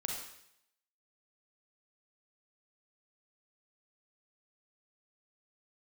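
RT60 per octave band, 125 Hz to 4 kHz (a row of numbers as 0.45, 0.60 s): 0.75, 0.70, 0.75, 0.75, 0.75, 0.75 s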